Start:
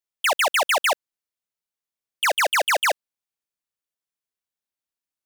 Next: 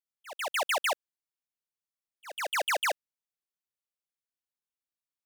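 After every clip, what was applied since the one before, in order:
volume swells 395 ms
level −8 dB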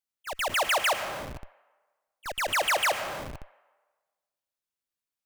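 convolution reverb RT60 1.4 s, pre-delay 65 ms, DRR 11.5 dB
in parallel at −4 dB: comparator with hysteresis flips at −47.5 dBFS
on the sum: level +2 dB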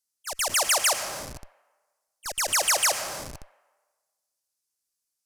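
flat-topped bell 7,500 Hz +13.5 dB
level −1.5 dB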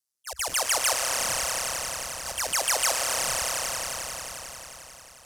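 echo that builds up and dies away 89 ms, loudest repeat 5, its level −9 dB
ring modulation 65 Hz

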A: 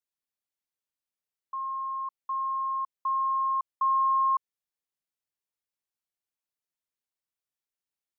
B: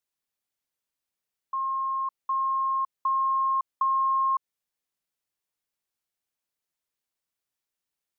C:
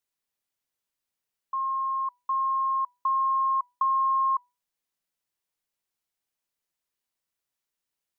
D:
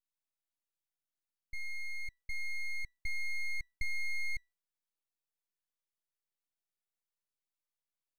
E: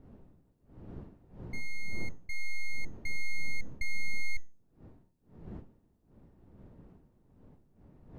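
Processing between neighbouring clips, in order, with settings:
downward compressor, threshold −27 dBFS, peak gain reduction 4.5 dB; level +4.5 dB
tuned comb filter 990 Hz, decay 0.29 s, mix 60%; level +8 dB
full-wave rectification; level −8 dB
wind on the microphone 230 Hz −52 dBFS; tuned comb filter 910 Hz, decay 0.37 s, mix 70%; level +10.5 dB

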